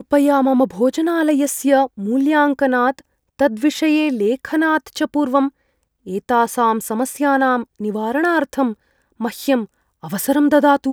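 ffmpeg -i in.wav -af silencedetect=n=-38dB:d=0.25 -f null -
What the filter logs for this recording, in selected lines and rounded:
silence_start: 3.01
silence_end: 3.39 | silence_duration: 0.39
silence_start: 5.49
silence_end: 6.06 | silence_duration: 0.57
silence_start: 8.74
silence_end: 9.20 | silence_duration: 0.46
silence_start: 9.66
silence_end: 10.03 | silence_duration: 0.38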